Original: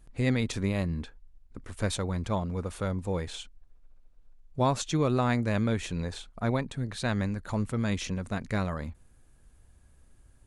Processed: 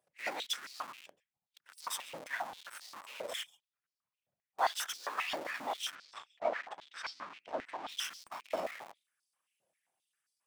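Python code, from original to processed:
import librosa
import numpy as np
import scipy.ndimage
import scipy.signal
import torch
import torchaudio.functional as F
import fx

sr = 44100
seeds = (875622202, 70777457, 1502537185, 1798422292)

p1 = fx.lower_of_two(x, sr, delay_ms=0.37)
p2 = fx.noise_reduce_blind(p1, sr, reduce_db=9)
p3 = p2 + 0.83 * np.pad(p2, (int(4.1 * sr / 1000.0), 0))[:len(p2)]
p4 = p3 + fx.echo_single(p3, sr, ms=137, db=-17.5, dry=0)
p5 = fx.whisperise(p4, sr, seeds[0])
p6 = fx.schmitt(p5, sr, flips_db=-40.5)
p7 = p5 + (p6 * 10.0 ** (-5.0 / 20.0))
p8 = fx.air_absorb(p7, sr, metres=130.0, at=(5.94, 7.88), fade=0.02)
p9 = fx.filter_held_highpass(p8, sr, hz=7.5, low_hz=600.0, high_hz=4700.0)
y = p9 * 10.0 ** (-7.0 / 20.0)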